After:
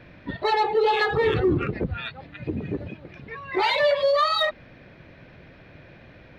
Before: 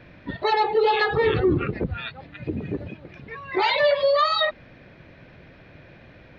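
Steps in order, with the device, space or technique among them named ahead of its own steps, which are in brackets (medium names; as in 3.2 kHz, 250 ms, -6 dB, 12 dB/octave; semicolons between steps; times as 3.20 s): parallel distortion (in parallel at -12 dB: hard clipper -23 dBFS, distortion -8 dB); on the sum: trim -2 dB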